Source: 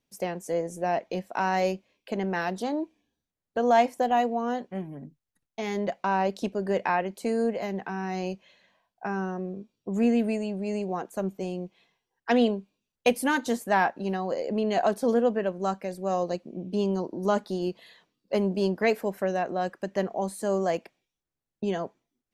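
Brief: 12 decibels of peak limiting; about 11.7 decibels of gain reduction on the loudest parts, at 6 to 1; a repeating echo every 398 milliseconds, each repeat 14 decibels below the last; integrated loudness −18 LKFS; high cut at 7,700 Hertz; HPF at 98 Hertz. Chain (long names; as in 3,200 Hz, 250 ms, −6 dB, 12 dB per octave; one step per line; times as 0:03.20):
high-pass filter 98 Hz
low-pass filter 7,700 Hz
downward compressor 6 to 1, threshold −29 dBFS
brickwall limiter −26.5 dBFS
repeating echo 398 ms, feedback 20%, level −14 dB
level +18.5 dB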